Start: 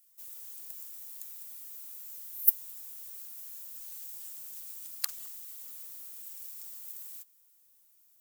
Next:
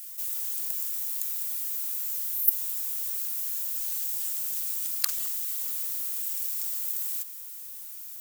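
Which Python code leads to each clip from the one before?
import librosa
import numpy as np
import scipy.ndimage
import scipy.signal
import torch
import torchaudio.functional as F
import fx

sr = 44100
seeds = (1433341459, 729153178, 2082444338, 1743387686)

y = scipy.signal.sosfilt(scipy.signal.butter(2, 980.0, 'highpass', fs=sr, output='sos'), x)
y = fx.env_flatten(y, sr, amount_pct=50)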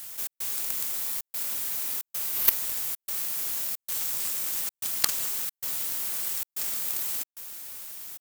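y = fx.halfwave_hold(x, sr)
y = fx.step_gate(y, sr, bpm=112, pattern='xx.xxxxxx.xxx', floor_db=-60.0, edge_ms=4.5)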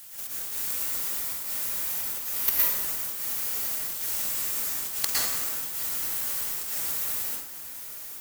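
y = fx.rev_plate(x, sr, seeds[0], rt60_s=1.2, hf_ratio=0.55, predelay_ms=100, drr_db=-7.5)
y = F.gain(torch.from_numpy(y), -5.5).numpy()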